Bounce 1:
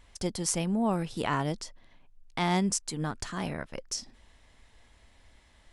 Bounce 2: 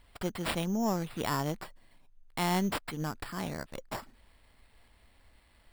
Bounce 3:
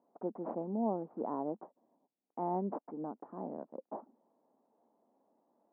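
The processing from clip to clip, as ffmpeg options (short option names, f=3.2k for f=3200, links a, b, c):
-af "acrusher=samples=7:mix=1:aa=0.000001,aeval=exprs='0.224*(cos(1*acos(clip(val(0)/0.224,-1,1)))-cos(1*PI/2))+0.0158*(cos(4*acos(clip(val(0)/0.224,-1,1)))-cos(4*PI/2))':c=same,volume=-3dB"
-af "asuperpass=centerf=440:order=8:qfactor=0.64,volume=-1.5dB"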